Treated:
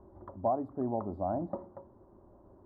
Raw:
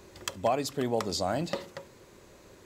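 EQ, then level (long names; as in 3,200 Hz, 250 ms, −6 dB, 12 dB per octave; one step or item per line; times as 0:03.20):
inverse Chebyshev low-pass filter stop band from 2,400 Hz, stop band 50 dB
parametric band 150 Hz −13.5 dB 0.3 octaves
parametric band 470 Hz −14 dB 0.3 octaves
0.0 dB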